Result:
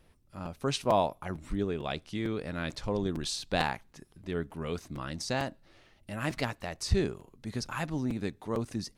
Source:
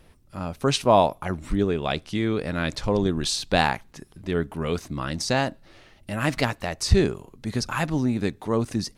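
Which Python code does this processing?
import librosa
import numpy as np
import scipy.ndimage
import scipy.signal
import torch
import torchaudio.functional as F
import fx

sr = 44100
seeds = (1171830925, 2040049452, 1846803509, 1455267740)

y = fx.buffer_crackle(x, sr, first_s=0.45, period_s=0.45, block=256, kind='repeat')
y = y * 10.0 ** (-8.5 / 20.0)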